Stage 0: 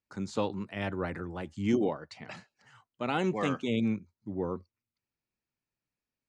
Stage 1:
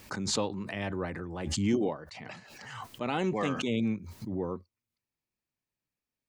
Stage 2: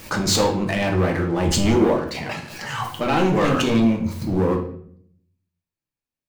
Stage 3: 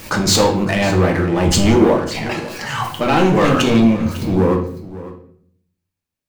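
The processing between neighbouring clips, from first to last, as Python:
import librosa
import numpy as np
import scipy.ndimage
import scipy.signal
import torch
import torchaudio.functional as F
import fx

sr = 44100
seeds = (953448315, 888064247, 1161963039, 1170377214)

y1 = fx.notch(x, sr, hz=1400.0, q=15.0)
y1 = fx.pre_swell(y1, sr, db_per_s=37.0)
y1 = y1 * 10.0 ** (-1.0 / 20.0)
y2 = fx.leveller(y1, sr, passes=3)
y2 = fx.room_shoebox(y2, sr, seeds[0], volume_m3=100.0, walls='mixed', distance_m=0.69)
y2 = y2 * 10.0 ** (2.0 / 20.0)
y3 = y2 + 10.0 ** (-16.5 / 20.0) * np.pad(y2, (int(552 * sr / 1000.0), 0))[:len(y2)]
y3 = y3 * 10.0 ** (5.0 / 20.0)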